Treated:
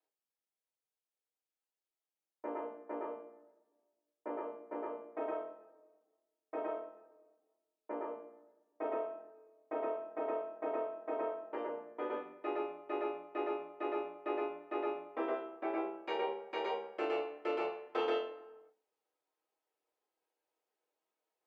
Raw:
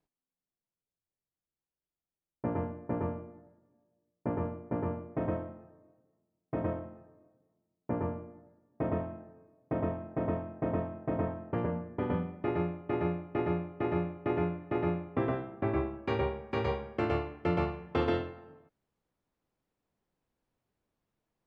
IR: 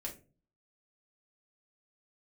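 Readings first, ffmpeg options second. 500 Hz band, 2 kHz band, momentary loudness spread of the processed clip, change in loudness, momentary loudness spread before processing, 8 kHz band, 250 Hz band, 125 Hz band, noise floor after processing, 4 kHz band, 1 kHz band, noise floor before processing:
−3.0 dB, −4.0 dB, 9 LU, −5.5 dB, 7 LU, can't be measured, −11.0 dB, below −35 dB, below −85 dBFS, −0.5 dB, −2.0 dB, below −85 dBFS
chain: -filter_complex "[0:a]highpass=frequency=410:width=0.5412,highpass=frequency=410:width=1.3066[link_01];[1:a]atrim=start_sample=2205,asetrate=61740,aresample=44100[link_02];[link_01][link_02]afir=irnorm=-1:irlink=0,volume=1.5dB"

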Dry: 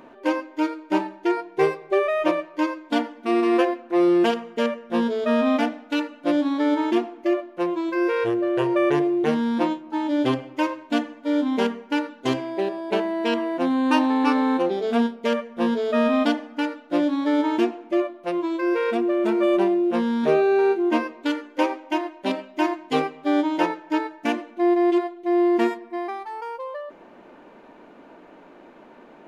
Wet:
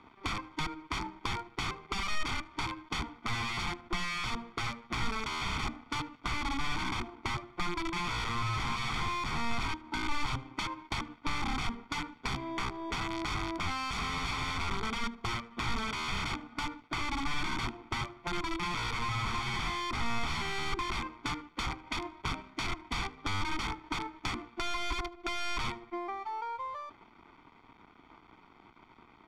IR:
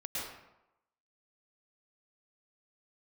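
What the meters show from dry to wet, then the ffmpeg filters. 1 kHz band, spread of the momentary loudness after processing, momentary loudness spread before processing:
−8.0 dB, 5 LU, 7 LU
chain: -filter_complex "[0:a]highshelf=frequency=2000:gain=-4.5,aeval=exprs='(mod(11.2*val(0)+1,2)-1)/11.2':channel_layout=same,equalizer=frequency=170:width_type=o:width=2.8:gain=-6,asplit=2[link_01][link_02];[link_02]adelay=76,lowpass=frequency=2100:poles=1,volume=-18.5dB,asplit=2[link_03][link_04];[link_04]adelay=76,lowpass=frequency=2100:poles=1,volume=0.5,asplit=2[link_05][link_06];[link_06]adelay=76,lowpass=frequency=2100:poles=1,volume=0.5,asplit=2[link_07][link_08];[link_08]adelay=76,lowpass=frequency=2100:poles=1,volume=0.5[link_09];[link_01][link_03][link_05][link_07][link_09]amix=inputs=5:normalize=0,aeval=exprs='sgn(val(0))*max(abs(val(0))-0.00299,0)':channel_layout=same,lowpass=4300,aecho=1:1:0.9:0.81,acrossover=split=200[link_10][link_11];[link_11]acompressor=threshold=-36dB:ratio=3[link_12];[link_10][link_12]amix=inputs=2:normalize=0"

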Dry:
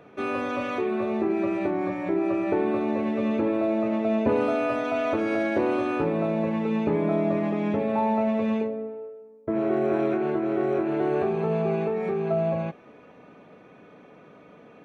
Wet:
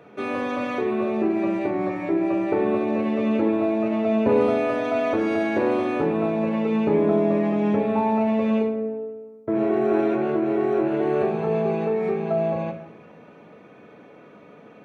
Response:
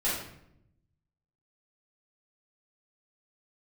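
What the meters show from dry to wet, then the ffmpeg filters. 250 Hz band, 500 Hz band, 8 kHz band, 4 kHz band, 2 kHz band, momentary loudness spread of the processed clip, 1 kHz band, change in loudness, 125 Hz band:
+3.0 dB, +3.0 dB, can't be measured, +2.0 dB, +1.5 dB, 6 LU, +2.0 dB, +3.0 dB, +1.0 dB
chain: -filter_complex "[0:a]highpass=79,asplit=2[link_01][link_02];[1:a]atrim=start_sample=2205[link_03];[link_02][link_03]afir=irnorm=-1:irlink=0,volume=-12dB[link_04];[link_01][link_04]amix=inputs=2:normalize=0"

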